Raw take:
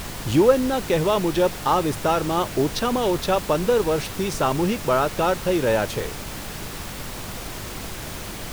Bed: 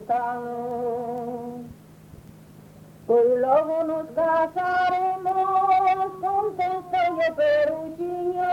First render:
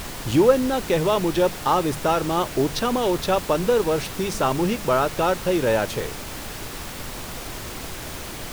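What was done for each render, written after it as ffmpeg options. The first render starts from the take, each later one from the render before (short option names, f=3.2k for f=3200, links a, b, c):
-af "bandreject=f=50:t=h:w=4,bandreject=f=100:t=h:w=4,bandreject=f=150:t=h:w=4,bandreject=f=200:t=h:w=4"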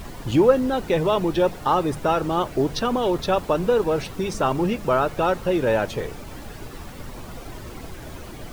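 -af "afftdn=nr=11:nf=-34"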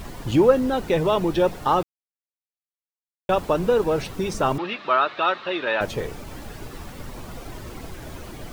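-filter_complex "[0:a]asettb=1/sr,asplit=3[a][b][c];[a]atrim=end=4.584[d];[b]atrim=start=4.58:end=5.81,asetpts=PTS-STARTPTS,afade=t=in:d=0.004:c=qsin,afade=t=out:st=1.226:d=0.004:c=qsin,highpass=440,equalizer=f=480:t=q:w=4:g=-9,equalizer=f=810:t=q:w=4:g=-3,equalizer=f=1.2k:t=q:w=4:g=6,equalizer=f=1.8k:t=q:w=4:g=5,equalizer=f=2.6k:t=q:w=4:g=5,equalizer=f=3.8k:t=q:w=4:g=10,lowpass=f=4.3k:w=0.5412,lowpass=f=4.3k:w=1.3066[e];[c]atrim=start=5.806[f];[d][e]acrossfade=d=0.004:c1=hsin:c2=qsin[g];[g][f]acrossfade=d=0.004:c1=qsin:c2=hsin,asplit=3[h][i][j];[h]atrim=end=1.83,asetpts=PTS-STARTPTS,afade=t=out:st=1.826:d=0.004:c=hsin[k];[i]atrim=start=1.83:end=3.29,asetpts=PTS-STARTPTS,volume=0[l];[j]atrim=start=3.29,asetpts=PTS-STARTPTS,afade=t=in:d=0.004:c=hsin[m];[k][l][m]concat=n=3:v=0:a=1"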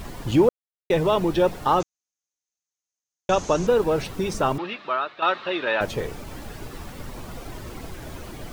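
-filter_complex "[0:a]asettb=1/sr,asplit=3[a][b][c];[a]atrim=end=1.804[d];[b]atrim=start=1.8:end=3.67,asetpts=PTS-STARTPTS,afade=t=in:d=0.004:c=qsin,afade=t=out:st=1.866:d=0.004:c=qsin,lowpass=f=6.4k:t=q:w=8.8[e];[c]atrim=start=3.666[f];[d][e]acrossfade=d=0.004:c1=hsin:c2=qsin[g];[g][f]acrossfade=d=0.004:c1=qsin:c2=hsin,asplit=4[h][i][j][k];[h]atrim=end=0.49,asetpts=PTS-STARTPTS,afade=t=out:st=0.486:d=0.004:c=hsin[l];[i]atrim=start=0.49:end=0.9,asetpts=PTS-STARTPTS,volume=0[m];[j]atrim=start=0.9:end=5.22,asetpts=PTS-STARTPTS,afade=t=in:d=0.004:c=hsin,afade=t=out:st=3.46:d=0.86:silence=0.316228[n];[k]atrim=start=5.22,asetpts=PTS-STARTPTS,afade=t=in:d=0.004:c=hsin:silence=0.316228[o];[l][m][n][o]concat=n=4:v=0:a=1"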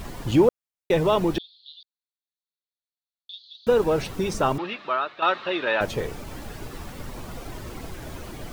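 -filter_complex "[0:a]asettb=1/sr,asplit=3[a][b][c];[a]atrim=end=1.384[d];[b]atrim=start=1.38:end=3.67,asetpts=PTS-STARTPTS,afade=t=in:d=0.004:c=qsin,afade=t=out:st=2.286:d=0.004:c=qsin,asuperpass=centerf=3900:order=8:qfactor=3.2[e];[c]atrim=start=3.666[f];[d][e]acrossfade=d=0.004:c1=hsin:c2=qsin[g];[g][f]acrossfade=d=0.004:c1=qsin:c2=hsin"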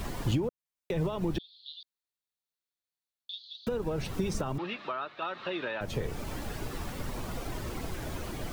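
-filter_complex "[0:a]alimiter=limit=-16.5dB:level=0:latency=1:release=113,acrossover=split=210[a][b];[b]acompressor=threshold=-35dB:ratio=3[c];[a][c]amix=inputs=2:normalize=0"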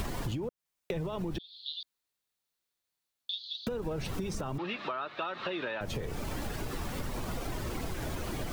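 -filter_complex "[0:a]asplit=2[a][b];[b]alimiter=level_in=4dB:limit=-24dB:level=0:latency=1:release=23,volume=-4dB,volume=1.5dB[c];[a][c]amix=inputs=2:normalize=0,acompressor=threshold=-32dB:ratio=6"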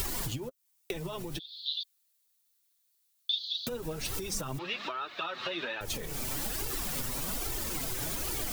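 -af "crystalizer=i=4.5:c=0,flanger=delay=2.2:depth=5.8:regen=17:speed=1.2:shape=sinusoidal"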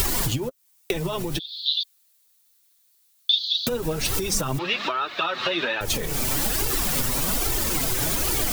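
-af "volume=10.5dB"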